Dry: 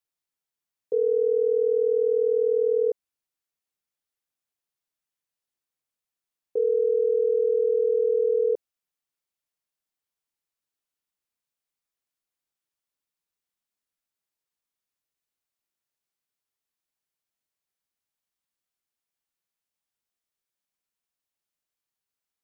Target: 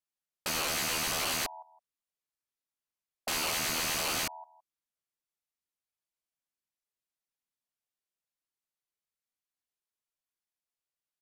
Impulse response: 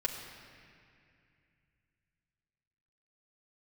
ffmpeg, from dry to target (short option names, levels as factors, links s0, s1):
-filter_complex "[0:a]flanger=delay=1.2:depth=3.1:regen=-60:speed=0.53:shape=triangular,aecho=1:1:327|654:0.075|0.0157,asplit=2[s0][s1];[s1]asetrate=33038,aresample=44100,atempo=1.33484,volume=0.501[s2];[s0][s2]amix=inputs=2:normalize=0,aresample=16000,aeval=exprs='(mod(22.4*val(0)+1,2)-1)/22.4':c=same,aresample=44100,asetrate=88200,aresample=44100"